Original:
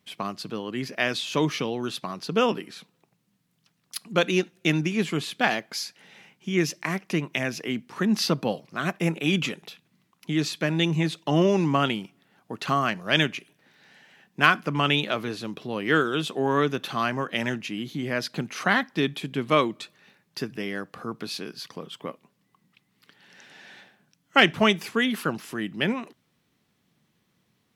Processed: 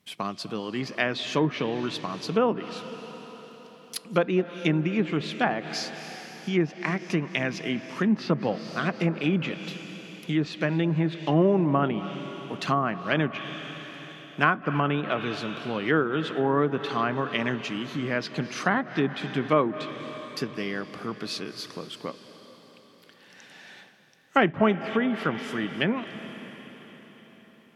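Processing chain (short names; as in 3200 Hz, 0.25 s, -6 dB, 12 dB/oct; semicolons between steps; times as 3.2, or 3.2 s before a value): reverb RT60 4.8 s, pre-delay 0.158 s, DRR 11.5 dB; treble ducked by the level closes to 1300 Hz, closed at -19 dBFS; high shelf 8400 Hz +4.5 dB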